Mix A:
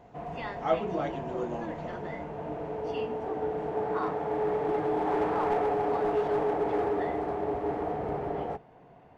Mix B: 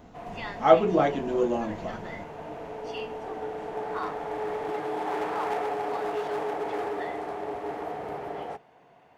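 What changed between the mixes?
speech +9.5 dB; background: add tilt +3 dB/oct

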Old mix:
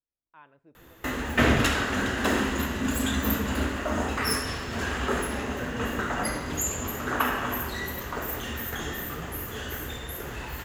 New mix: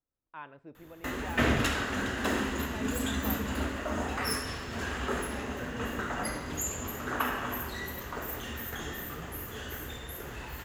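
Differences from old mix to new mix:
speech +8.0 dB; background -5.0 dB

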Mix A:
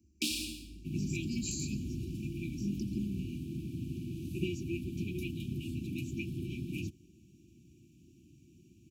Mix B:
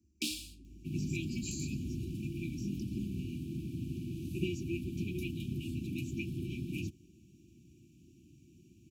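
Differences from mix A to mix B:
speech -4.0 dB; first sound: send off

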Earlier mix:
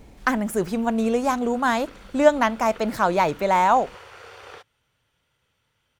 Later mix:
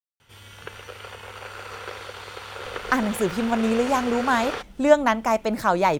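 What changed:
speech: entry +2.65 s; background +11.5 dB

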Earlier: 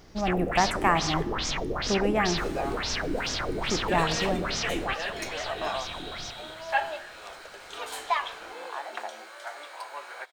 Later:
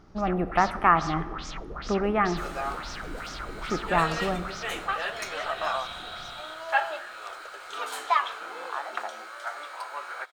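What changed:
speech: add running mean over 6 samples; first sound -11.0 dB; master: add bell 1300 Hz +10.5 dB 0.38 oct

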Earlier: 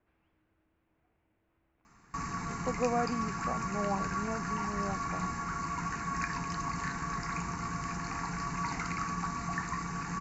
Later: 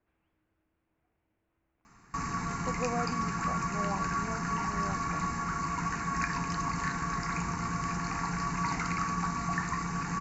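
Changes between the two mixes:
speech -4.0 dB; reverb: on, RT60 1.4 s

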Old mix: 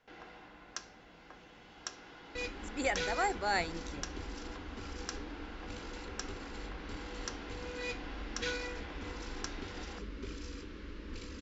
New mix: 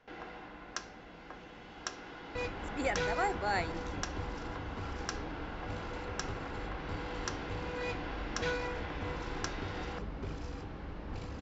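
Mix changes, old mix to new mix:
first sound +6.5 dB; second sound: remove fixed phaser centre 310 Hz, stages 4; master: add high shelf 3200 Hz -7.5 dB

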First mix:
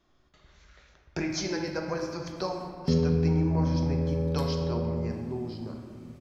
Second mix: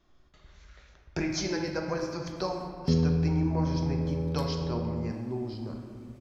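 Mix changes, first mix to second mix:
background: send off; master: add low shelf 64 Hz +8 dB

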